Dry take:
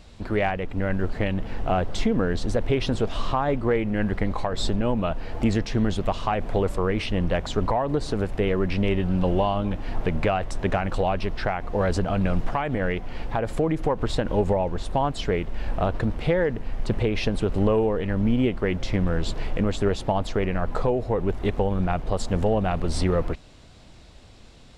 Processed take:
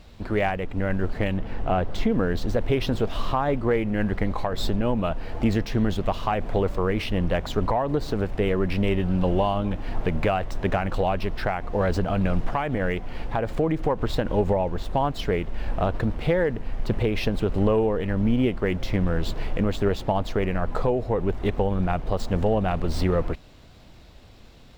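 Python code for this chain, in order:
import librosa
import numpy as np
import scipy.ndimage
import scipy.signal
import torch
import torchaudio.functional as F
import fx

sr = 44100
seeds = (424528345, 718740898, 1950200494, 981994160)

y = scipy.ndimage.median_filter(x, 5, mode='constant')
y = fx.high_shelf(y, sr, hz=4400.0, db=-6.0, at=(1.37, 2.1))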